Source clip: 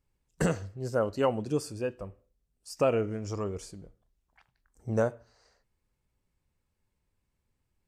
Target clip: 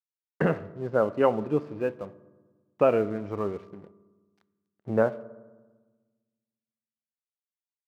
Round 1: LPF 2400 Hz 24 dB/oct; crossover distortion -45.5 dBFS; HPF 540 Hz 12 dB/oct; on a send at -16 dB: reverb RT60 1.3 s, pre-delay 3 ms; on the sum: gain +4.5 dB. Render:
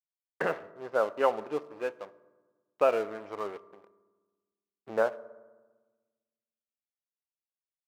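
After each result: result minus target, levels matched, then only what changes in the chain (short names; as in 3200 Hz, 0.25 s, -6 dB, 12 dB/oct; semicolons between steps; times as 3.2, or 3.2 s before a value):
125 Hz band -15.0 dB; crossover distortion: distortion +7 dB
change: HPF 160 Hz 12 dB/oct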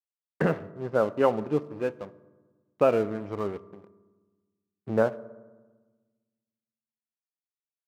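crossover distortion: distortion +7 dB
change: crossover distortion -54 dBFS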